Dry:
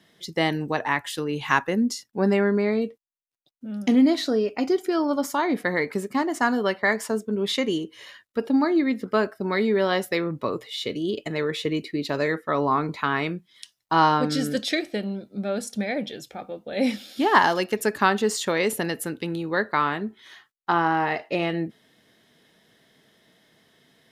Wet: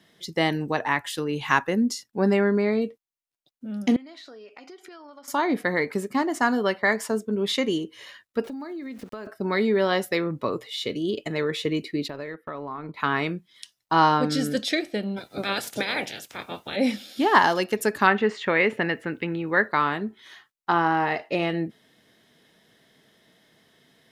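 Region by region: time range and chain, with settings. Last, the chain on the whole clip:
3.96–5.28 s: band-pass filter 2.1 kHz, Q 0.53 + compression 12:1, threshold -41 dBFS
8.44–9.27 s: small samples zeroed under -43.5 dBFS + compression 12:1, threshold -32 dBFS
12.08–13.00 s: compression 4:1, threshold -32 dBFS + peaking EQ 6.8 kHz -14 dB 0.83 oct + transient shaper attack +1 dB, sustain -10 dB
15.16–16.75 s: spectral peaks clipped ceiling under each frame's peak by 28 dB + high-pass 100 Hz + band-stop 4.3 kHz, Q 25
18.07–19.68 s: resonant low-pass 2.2 kHz, resonance Q 2.1 + word length cut 12-bit, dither none
whole clip: none

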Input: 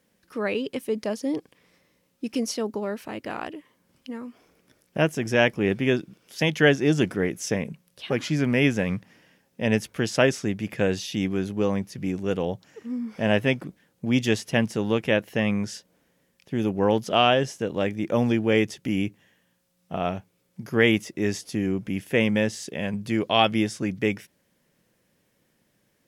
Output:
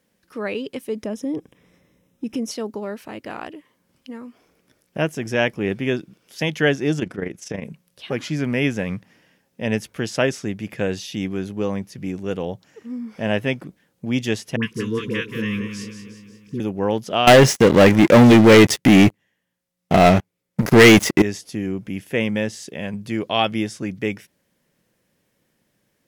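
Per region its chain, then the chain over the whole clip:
1.03–2.51 s: Butterworth band-stop 4.5 kHz, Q 4.7 + bass shelf 430 Hz +10.5 dB + compression 2:1, threshold -26 dBFS
6.99–7.63 s: treble shelf 10 kHz -11.5 dB + AM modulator 25 Hz, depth 55%
14.56–16.60 s: elliptic band-stop 480–1000 Hz + phase dispersion highs, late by 72 ms, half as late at 940 Hz + two-band feedback delay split 840 Hz, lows 233 ms, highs 179 ms, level -8.5 dB
17.27–21.22 s: waveshaping leveller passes 5 + peaking EQ 2 kHz +5 dB 0.21 oct
whole clip: none

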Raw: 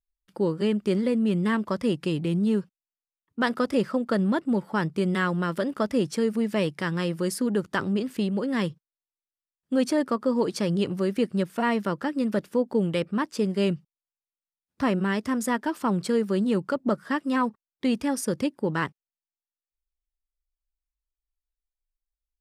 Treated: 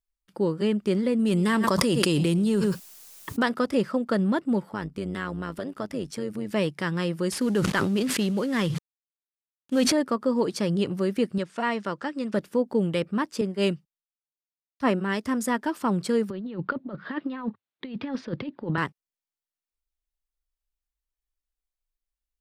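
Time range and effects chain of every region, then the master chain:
1.19–3.43 s: tone controls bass -3 dB, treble +9 dB + delay 107 ms -21.5 dB + level flattener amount 100%
4.69–6.51 s: AM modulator 100 Hz, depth 50% + compression 1.5:1, threshold -33 dBFS
7.32–9.92 s: CVSD coder 64 kbps + peaking EQ 3.2 kHz +4 dB 2.1 oct + decay stretcher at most 26 dB/s
11.38–12.34 s: low-pass 8.4 kHz 24 dB/octave + bass shelf 370 Hz -7.5 dB
13.41–15.26 s: peaking EQ 94 Hz -8.5 dB 1.5 oct + three bands expanded up and down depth 100%
16.30–18.78 s: Chebyshev band-pass 100–4000 Hz, order 4 + compressor with a negative ratio -29 dBFS, ratio -0.5
whole clip: none

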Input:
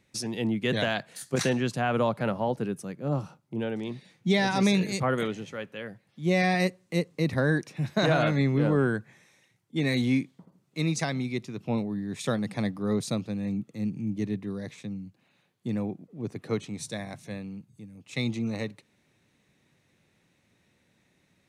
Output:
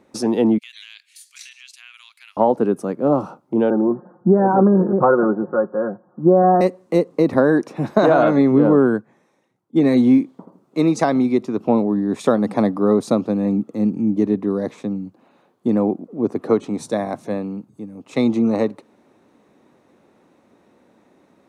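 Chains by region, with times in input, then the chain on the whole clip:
0.58–2.37 s: elliptic high-pass 2.3 kHz, stop band 80 dB + compression 2:1, threshold -43 dBFS
3.70–6.61 s: steep low-pass 1.6 kHz 96 dB/octave + comb 5.6 ms, depth 66%
8.51–10.18 s: peaking EQ 150 Hz +5 dB 1.7 oct + upward expansion, over -42 dBFS
whole clip: high-order bell 540 Hz +15.5 dB 3 oct; compression 2.5:1, threshold -14 dBFS; trim +1.5 dB

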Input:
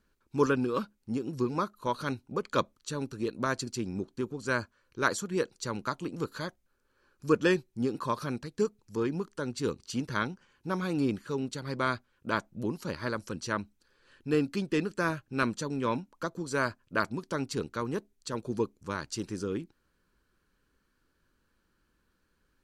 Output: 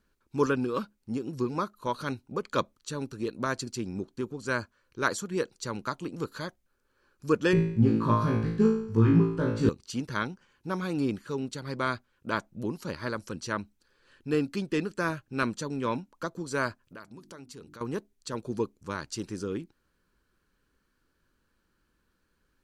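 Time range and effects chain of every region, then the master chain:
7.53–9.69 s: tone controls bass +12 dB, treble -13 dB + flutter echo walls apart 3.1 m, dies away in 0.63 s
16.85–17.81 s: treble shelf 8.7 kHz +7.5 dB + hum notches 50/100/150/200/250/300/350 Hz + compression 3:1, threshold -47 dBFS
whole clip: none

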